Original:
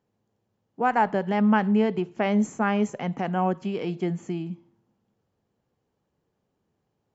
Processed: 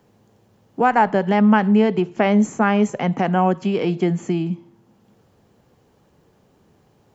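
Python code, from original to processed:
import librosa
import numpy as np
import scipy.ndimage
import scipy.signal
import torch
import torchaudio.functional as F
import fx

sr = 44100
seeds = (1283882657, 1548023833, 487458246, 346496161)

y = fx.band_squash(x, sr, depth_pct=40)
y = y * librosa.db_to_amplitude(6.5)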